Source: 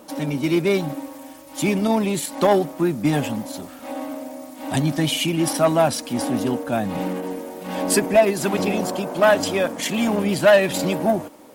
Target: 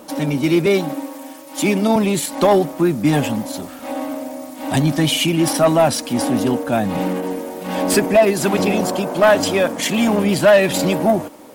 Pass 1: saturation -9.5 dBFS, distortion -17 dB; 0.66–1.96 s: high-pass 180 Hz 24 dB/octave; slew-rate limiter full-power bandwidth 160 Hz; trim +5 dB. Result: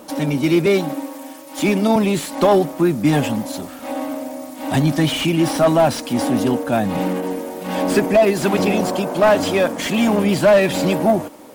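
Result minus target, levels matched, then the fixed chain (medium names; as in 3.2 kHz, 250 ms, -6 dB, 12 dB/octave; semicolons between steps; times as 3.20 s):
slew-rate limiter: distortion +12 dB
saturation -9.5 dBFS, distortion -17 dB; 0.66–1.96 s: high-pass 180 Hz 24 dB/octave; slew-rate limiter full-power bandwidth 580.5 Hz; trim +5 dB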